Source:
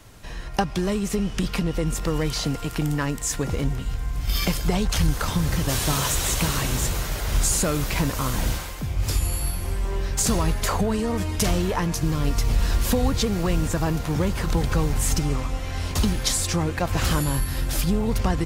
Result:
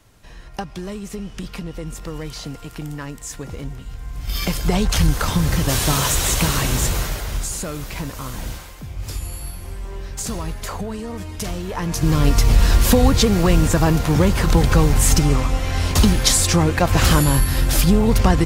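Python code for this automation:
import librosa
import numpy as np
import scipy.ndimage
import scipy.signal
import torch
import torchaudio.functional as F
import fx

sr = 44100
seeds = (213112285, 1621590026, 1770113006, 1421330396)

y = fx.gain(x, sr, db=fx.line((3.89, -6.0), (4.77, 4.5), (7.03, 4.5), (7.47, -5.0), (11.64, -5.0), (12.13, 7.5)))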